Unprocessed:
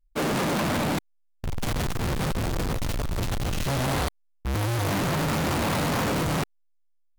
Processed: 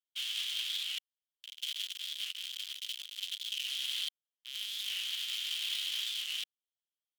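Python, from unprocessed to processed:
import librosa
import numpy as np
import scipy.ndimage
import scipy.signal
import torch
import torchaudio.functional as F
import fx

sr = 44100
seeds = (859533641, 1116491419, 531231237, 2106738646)

y = fx.ladder_highpass(x, sr, hz=3000.0, resonance_pct=80)
y = fx.record_warp(y, sr, rpm=45.0, depth_cents=100.0)
y = F.gain(torch.from_numpy(y), 3.0).numpy()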